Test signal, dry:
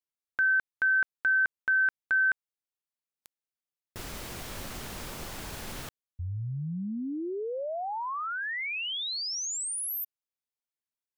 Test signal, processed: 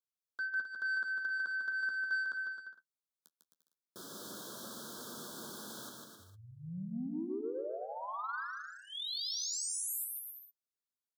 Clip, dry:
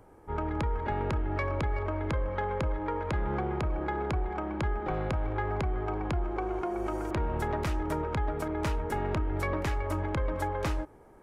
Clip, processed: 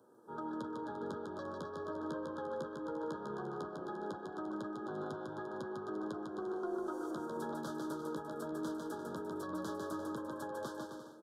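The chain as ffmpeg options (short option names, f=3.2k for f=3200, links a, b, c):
-filter_complex "[0:a]highpass=f=180:w=0.5412,highpass=f=180:w=1.3066,equalizer=f=780:w=2.9:g=-8.5,alimiter=limit=-24dB:level=0:latency=1:release=427,flanger=delay=8.3:depth=5.2:regen=-31:speed=0.19:shape=sinusoidal,asoftclip=type=tanh:threshold=-28dB,asuperstop=centerf=2300:order=12:qfactor=1.4,asplit=2[a][b];[b]aecho=0:1:150|262.5|346.9|410.2|457.6:0.631|0.398|0.251|0.158|0.1[c];[a][c]amix=inputs=2:normalize=0,volume=-2dB"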